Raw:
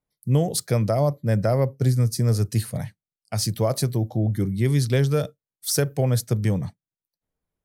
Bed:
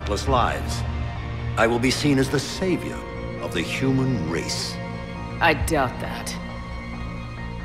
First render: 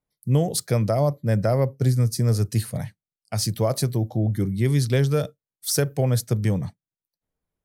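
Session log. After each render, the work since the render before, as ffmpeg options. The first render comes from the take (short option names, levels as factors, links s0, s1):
-af anull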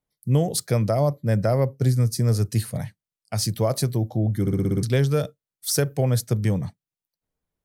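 -filter_complex "[0:a]asplit=8[s0][s1][s2][s3][s4][s5][s6][s7];[s0]atrim=end=4.472[s8];[s1]atrim=start=4.408:end=4.472[s9];[s2]atrim=start=4.408:end=4.472[s10];[s3]atrim=start=4.408:end=4.472[s11];[s4]atrim=start=4.408:end=4.472[s12];[s5]atrim=start=4.408:end=4.472[s13];[s6]atrim=start=4.408:end=4.472[s14];[s7]atrim=start=4.828[s15];[s8][s9]acrossfade=d=0.004:c1=hsin:c2=hsin[s16];[s16][s10]acrossfade=d=0.004:c1=hsin:c2=hsin[s17];[s17][s11]acrossfade=d=0.004:c1=hsin:c2=hsin[s18];[s18][s12]acrossfade=d=0.004:c1=hsin:c2=hsin[s19];[s19][s13]acrossfade=d=0.004:c1=hsin:c2=hsin[s20];[s20][s14]acrossfade=d=0.004:c1=hsin:c2=hsin[s21];[s21][s15]acrossfade=d=0.004:c1=hsin:c2=hsin"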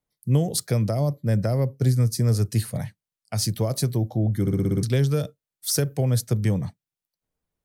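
-filter_complex "[0:a]acrossover=split=380|3000[s0][s1][s2];[s1]acompressor=threshold=0.0282:ratio=3[s3];[s0][s3][s2]amix=inputs=3:normalize=0"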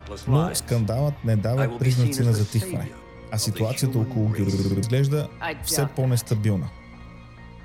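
-filter_complex "[1:a]volume=0.282[s0];[0:a][s0]amix=inputs=2:normalize=0"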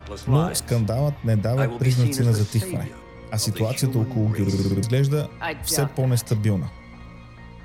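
-af "volume=1.12"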